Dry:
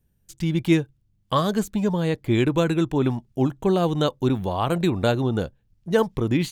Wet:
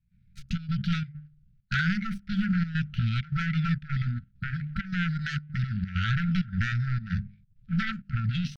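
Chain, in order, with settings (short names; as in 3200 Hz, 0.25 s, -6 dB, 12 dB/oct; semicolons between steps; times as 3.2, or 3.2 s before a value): high shelf 4700 Hz -6 dB; notches 50/100/150/200/250/300 Hz; compressor 4:1, threshold -27 dBFS, peak gain reduction 11.5 dB; sample leveller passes 1; formant shift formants +5 st; sine folder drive 10 dB, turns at -12.5 dBFS; tempo 0.76×; step gate ".xxxx.xxx.xxxx" 131 bpm -12 dB; brick-wall FIR band-stop 220–1300 Hz; air absorption 250 m; gain -4.5 dB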